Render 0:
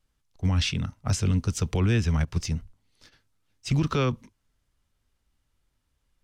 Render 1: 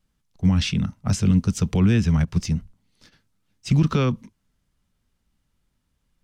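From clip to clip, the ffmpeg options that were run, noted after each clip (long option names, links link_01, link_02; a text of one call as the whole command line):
ffmpeg -i in.wav -af "equalizer=frequency=190:width_type=o:width=0.74:gain=10,volume=1dB" out.wav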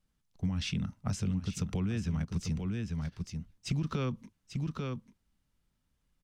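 ffmpeg -i in.wav -af "aecho=1:1:842:0.335,acompressor=threshold=-23dB:ratio=6,volume=-6dB" out.wav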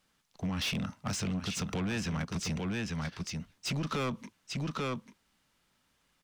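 ffmpeg -i in.wav -filter_complex "[0:a]asplit=2[link_01][link_02];[link_02]highpass=frequency=720:poles=1,volume=24dB,asoftclip=type=tanh:threshold=-20.5dB[link_03];[link_01][link_03]amix=inputs=2:normalize=0,lowpass=frequency=5700:poles=1,volume=-6dB,volume=-4dB" out.wav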